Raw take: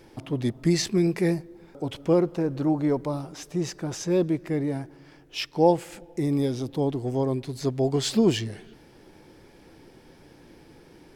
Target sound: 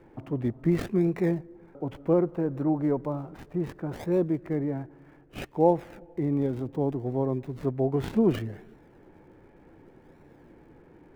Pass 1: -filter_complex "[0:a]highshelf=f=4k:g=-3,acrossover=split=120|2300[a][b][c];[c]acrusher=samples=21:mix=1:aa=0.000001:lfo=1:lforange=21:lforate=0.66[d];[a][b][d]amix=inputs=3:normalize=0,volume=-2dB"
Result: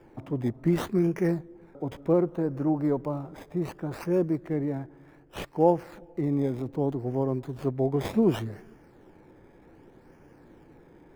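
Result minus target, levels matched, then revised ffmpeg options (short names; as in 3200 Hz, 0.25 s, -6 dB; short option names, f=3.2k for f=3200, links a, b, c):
decimation with a swept rate: distortion -8 dB
-filter_complex "[0:a]highshelf=f=4k:g=-3,acrossover=split=120|2300[a][b][c];[c]acrusher=samples=53:mix=1:aa=0.000001:lfo=1:lforange=53:lforate=0.66[d];[a][b][d]amix=inputs=3:normalize=0,volume=-2dB"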